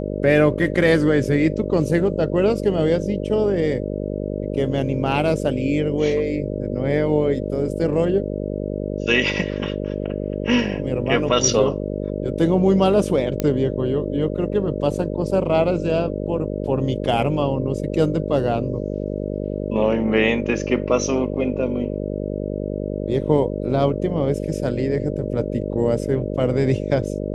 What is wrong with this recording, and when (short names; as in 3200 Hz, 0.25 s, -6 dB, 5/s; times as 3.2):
buzz 50 Hz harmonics 12 -26 dBFS
13.4 pop -8 dBFS